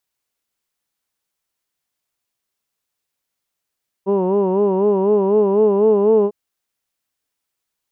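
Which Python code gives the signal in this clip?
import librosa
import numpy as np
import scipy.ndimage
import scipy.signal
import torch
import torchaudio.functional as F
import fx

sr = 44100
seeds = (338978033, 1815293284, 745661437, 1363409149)

y = fx.formant_vowel(sr, seeds[0], length_s=2.25, hz=190.0, glide_st=2.0, vibrato_hz=4.0, vibrato_st=0.95, f1_hz=440.0, f2_hz=960.0, f3_hz=2800.0)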